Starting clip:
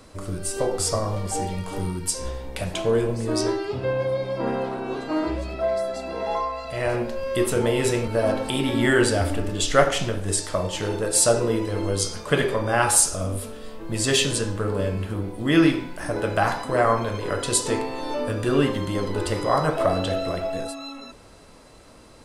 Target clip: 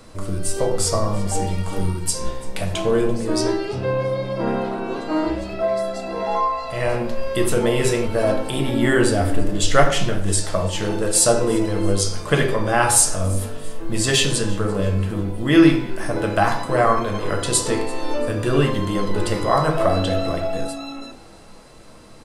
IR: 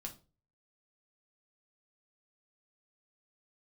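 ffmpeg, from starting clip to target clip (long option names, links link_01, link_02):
-filter_complex "[0:a]asettb=1/sr,asplit=3[link_01][link_02][link_03];[link_01]atrim=end=8.364[link_04];[link_02]atrim=start=8.36:end=9.62,asetpts=PTS-STARTPTS,afade=type=in:duration=0.004:curve=qsin,afade=type=out:start_time=1.256:duration=0.004:curve=qsin,equalizer=frequency=3400:width=0.41:gain=-4[link_05];[link_03]atrim=start=9.616[link_06];[link_04][link_05]acrossfade=duration=0.004:curve1=hsin:curve2=qsin[link_07];[link_07][link_06]acrossfade=duration=0.004:curve1=qsin:curve2=hsin,asplit=4[link_08][link_09][link_10][link_11];[link_09]adelay=339,afreqshift=55,volume=-22dB[link_12];[link_10]adelay=678,afreqshift=110,volume=-30dB[link_13];[link_11]adelay=1017,afreqshift=165,volume=-37.9dB[link_14];[link_08][link_12][link_13][link_14]amix=inputs=4:normalize=0,asplit=2[link_15][link_16];[1:a]atrim=start_sample=2205[link_17];[link_16][link_17]afir=irnorm=-1:irlink=0,volume=5dB[link_18];[link_15][link_18]amix=inputs=2:normalize=0,volume=-3.5dB"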